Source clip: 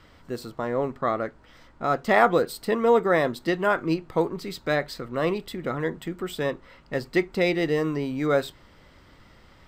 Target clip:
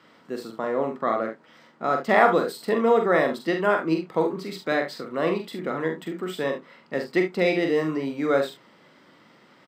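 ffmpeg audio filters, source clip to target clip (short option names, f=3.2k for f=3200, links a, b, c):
-filter_complex "[0:a]highpass=f=170:w=0.5412,highpass=f=170:w=1.3066,highshelf=f=5.6k:g=-6,asplit=2[a][b];[b]aecho=0:1:44|71:0.531|0.282[c];[a][c]amix=inputs=2:normalize=0"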